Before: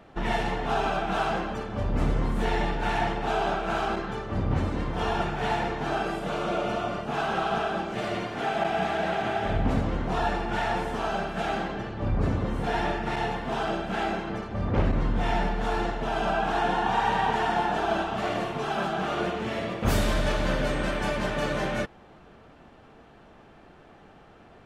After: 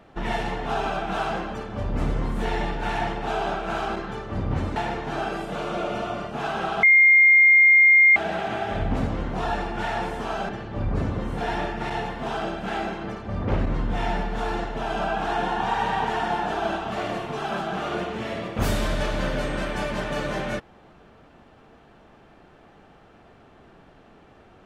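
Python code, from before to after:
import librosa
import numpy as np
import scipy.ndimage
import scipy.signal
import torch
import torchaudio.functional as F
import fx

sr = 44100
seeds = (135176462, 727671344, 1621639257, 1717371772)

y = fx.edit(x, sr, fx.cut(start_s=4.76, length_s=0.74),
    fx.bleep(start_s=7.57, length_s=1.33, hz=2120.0, db=-11.0),
    fx.cut(start_s=11.23, length_s=0.52), tone=tone)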